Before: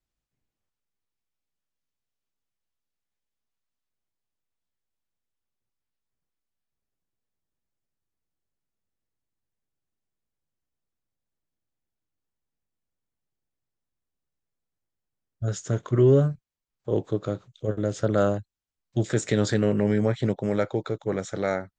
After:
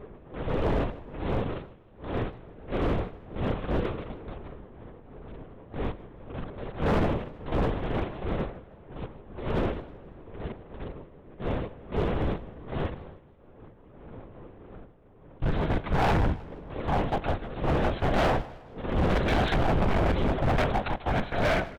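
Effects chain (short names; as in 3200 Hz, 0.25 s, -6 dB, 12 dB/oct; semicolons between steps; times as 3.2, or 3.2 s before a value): minimum comb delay 1.3 ms; wind noise 390 Hz -36 dBFS; HPF 120 Hz 6 dB/oct; harmonic-percussive split harmonic +4 dB; tube stage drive 21 dB, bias 0.5; in parallel at -4 dB: requantised 6-bit, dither none; on the sum: LPC vocoder at 8 kHz whisper; echo 74 ms -24 dB; overloaded stage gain 25 dB; warbling echo 0.158 s, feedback 43%, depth 141 cents, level -19 dB; gain +4 dB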